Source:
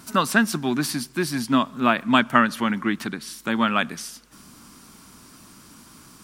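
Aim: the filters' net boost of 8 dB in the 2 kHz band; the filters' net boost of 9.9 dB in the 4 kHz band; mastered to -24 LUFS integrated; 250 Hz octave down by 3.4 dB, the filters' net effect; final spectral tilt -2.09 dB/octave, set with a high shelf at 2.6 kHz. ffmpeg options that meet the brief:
-af "equalizer=f=250:t=o:g=-4,equalizer=f=2000:t=o:g=8,highshelf=f=2600:g=3.5,equalizer=f=4000:t=o:g=7,volume=0.501"

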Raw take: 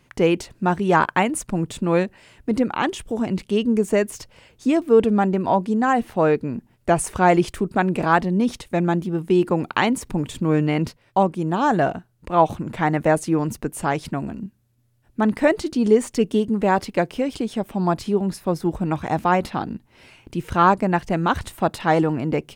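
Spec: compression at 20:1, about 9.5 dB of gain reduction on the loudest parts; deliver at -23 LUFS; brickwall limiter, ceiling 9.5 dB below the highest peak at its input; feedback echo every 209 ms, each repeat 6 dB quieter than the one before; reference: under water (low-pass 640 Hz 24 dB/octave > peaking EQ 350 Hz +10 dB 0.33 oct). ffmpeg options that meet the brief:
-af "acompressor=threshold=0.112:ratio=20,alimiter=limit=0.168:level=0:latency=1,lowpass=f=640:w=0.5412,lowpass=f=640:w=1.3066,equalizer=f=350:t=o:w=0.33:g=10,aecho=1:1:209|418|627|836|1045|1254:0.501|0.251|0.125|0.0626|0.0313|0.0157,volume=1.12"

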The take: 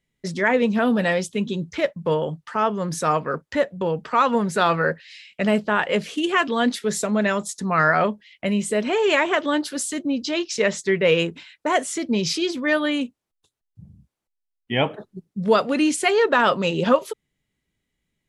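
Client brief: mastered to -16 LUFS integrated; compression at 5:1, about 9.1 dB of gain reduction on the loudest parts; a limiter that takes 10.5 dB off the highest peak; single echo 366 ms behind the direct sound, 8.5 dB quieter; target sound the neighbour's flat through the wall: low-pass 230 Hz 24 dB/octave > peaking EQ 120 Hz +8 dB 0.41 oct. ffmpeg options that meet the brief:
-af "acompressor=threshold=0.0794:ratio=5,alimiter=limit=0.0794:level=0:latency=1,lowpass=f=230:w=0.5412,lowpass=f=230:w=1.3066,equalizer=f=120:t=o:w=0.41:g=8,aecho=1:1:366:0.376,volume=11.9"

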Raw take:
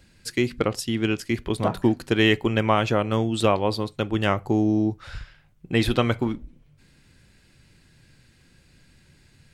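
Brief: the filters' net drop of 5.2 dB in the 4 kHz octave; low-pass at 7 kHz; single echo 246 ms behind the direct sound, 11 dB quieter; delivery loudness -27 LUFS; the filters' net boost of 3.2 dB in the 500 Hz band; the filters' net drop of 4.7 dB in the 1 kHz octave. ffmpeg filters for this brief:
-af "lowpass=7000,equalizer=f=500:t=o:g=6,equalizer=f=1000:t=o:g=-8.5,equalizer=f=4000:t=o:g=-6.5,aecho=1:1:246:0.282,volume=0.596"

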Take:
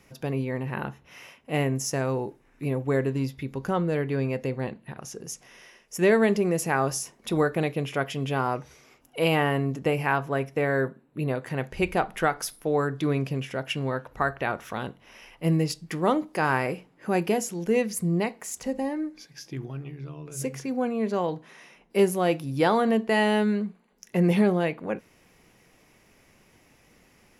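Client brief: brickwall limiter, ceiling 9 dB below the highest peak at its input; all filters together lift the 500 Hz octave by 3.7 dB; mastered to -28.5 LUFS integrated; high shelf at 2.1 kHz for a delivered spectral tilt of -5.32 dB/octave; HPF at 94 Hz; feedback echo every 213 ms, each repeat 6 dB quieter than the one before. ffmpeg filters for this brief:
-af "highpass=94,equalizer=f=500:t=o:g=5,highshelf=f=2100:g=-8,alimiter=limit=0.15:level=0:latency=1,aecho=1:1:213|426|639|852|1065|1278:0.501|0.251|0.125|0.0626|0.0313|0.0157,volume=0.841"

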